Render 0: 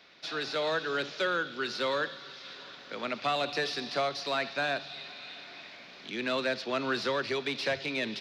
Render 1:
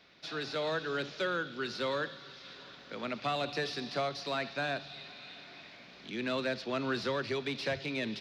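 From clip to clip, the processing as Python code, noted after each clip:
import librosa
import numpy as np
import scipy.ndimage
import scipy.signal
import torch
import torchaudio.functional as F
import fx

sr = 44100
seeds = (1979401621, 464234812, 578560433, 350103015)

y = fx.low_shelf(x, sr, hz=210.0, db=11.0)
y = F.gain(torch.from_numpy(y), -4.5).numpy()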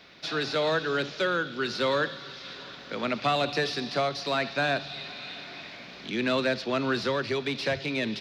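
y = fx.rider(x, sr, range_db=5, speed_s=2.0)
y = F.gain(torch.from_numpy(y), 6.0).numpy()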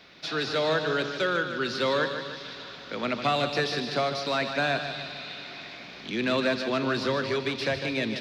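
y = fx.echo_feedback(x, sr, ms=151, feedback_pct=50, wet_db=-8.5)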